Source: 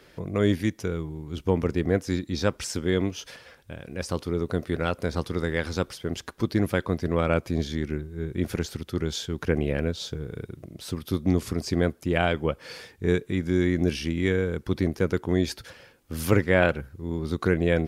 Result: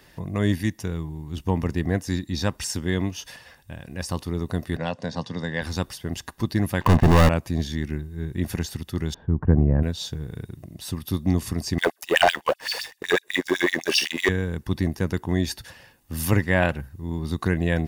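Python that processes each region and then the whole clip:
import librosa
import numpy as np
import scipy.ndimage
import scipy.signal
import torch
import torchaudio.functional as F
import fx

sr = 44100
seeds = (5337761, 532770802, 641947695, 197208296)

y = fx.chain(x, sr, fx.cabinet(low_hz=120.0, low_slope=24, high_hz=6500.0, hz=(360.0, 530.0, 2300.0), db=(-8, 4, -5)),
    fx.notch(hz=1300.0, q=5.6), at=(4.77, 5.62))
y = fx.chain(y, sr, fx.gaussian_blur(sigma=4.0),
    fx.leveller(passes=5), at=(6.81, 7.29))
y = fx.chain(y, sr, fx.lowpass(hz=1300.0, slope=24),
    fx.low_shelf(hz=270.0, db=9.5), at=(9.14, 9.83))
y = fx.chain(y, sr, fx.filter_lfo_highpass(shape='sine', hz=7.9, low_hz=390.0, high_hz=5000.0, q=2.9),
    fx.leveller(passes=2), at=(11.78, 14.29))
y = fx.high_shelf(y, sr, hz=9600.0, db=8.5)
y = y + 0.49 * np.pad(y, (int(1.1 * sr / 1000.0), 0))[:len(y)]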